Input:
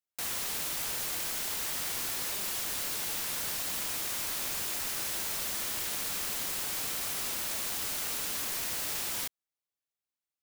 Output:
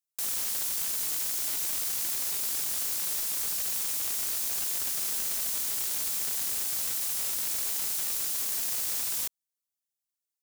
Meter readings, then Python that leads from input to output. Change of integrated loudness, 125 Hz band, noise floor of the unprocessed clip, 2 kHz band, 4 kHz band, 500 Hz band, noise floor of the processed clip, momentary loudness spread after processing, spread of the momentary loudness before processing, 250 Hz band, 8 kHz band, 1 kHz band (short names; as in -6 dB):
+4.0 dB, n/a, under -85 dBFS, -4.0 dB, -0.5 dB, -4.5 dB, under -85 dBFS, 0 LU, 0 LU, -5.0 dB, +4.0 dB, -5.0 dB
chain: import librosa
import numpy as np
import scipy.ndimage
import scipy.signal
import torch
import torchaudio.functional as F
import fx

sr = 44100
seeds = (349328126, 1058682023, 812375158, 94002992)

y = fx.bass_treble(x, sr, bass_db=-1, treble_db=13)
y = (np.mod(10.0 ** (13.0 / 20.0) * y + 1.0, 2.0) - 1.0) / 10.0 ** (13.0 / 20.0)
y = y * librosa.db_to_amplitude(-8.0)